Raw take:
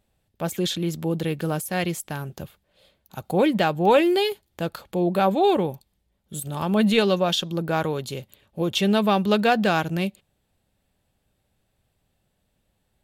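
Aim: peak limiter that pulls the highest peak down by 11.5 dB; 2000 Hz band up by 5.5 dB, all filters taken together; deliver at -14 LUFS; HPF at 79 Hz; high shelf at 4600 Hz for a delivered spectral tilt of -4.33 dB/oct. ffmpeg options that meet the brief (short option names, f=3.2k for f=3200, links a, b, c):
-af "highpass=79,equalizer=f=2k:t=o:g=8.5,highshelf=f=4.6k:g=-3.5,volume=12dB,alimiter=limit=-3.5dB:level=0:latency=1"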